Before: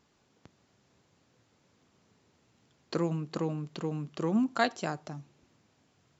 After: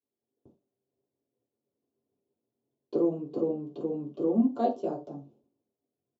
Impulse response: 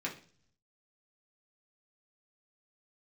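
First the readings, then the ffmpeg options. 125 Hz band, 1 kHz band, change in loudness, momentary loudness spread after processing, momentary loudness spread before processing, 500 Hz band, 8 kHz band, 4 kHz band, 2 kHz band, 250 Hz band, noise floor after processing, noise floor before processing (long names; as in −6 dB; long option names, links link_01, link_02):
−7.5 dB, −0.5 dB, +2.5 dB, 12 LU, 11 LU, +5.0 dB, can't be measured, below −15 dB, below −20 dB, +3.5 dB, below −85 dBFS, −70 dBFS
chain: -filter_complex "[0:a]agate=range=-33dB:threshold=-55dB:ratio=3:detection=peak,firequalizer=gain_entry='entry(210,0);entry(310,4);entry(560,5);entry(1900,-29);entry(3000,-16)':delay=0.05:min_phase=1[link_01];[1:a]atrim=start_sample=2205,atrim=end_sample=6174,asetrate=61740,aresample=44100[link_02];[link_01][link_02]afir=irnorm=-1:irlink=0"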